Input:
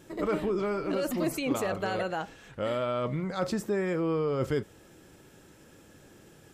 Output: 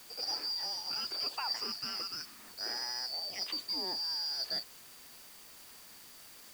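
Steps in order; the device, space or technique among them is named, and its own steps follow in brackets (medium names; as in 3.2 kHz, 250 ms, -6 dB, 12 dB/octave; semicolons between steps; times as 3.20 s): split-band scrambled radio (four frequency bands reordered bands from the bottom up 2341; band-pass 310–3200 Hz; white noise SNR 15 dB); 1.59–2.40 s: peaking EQ 560 Hz -8.5 dB 0.8 oct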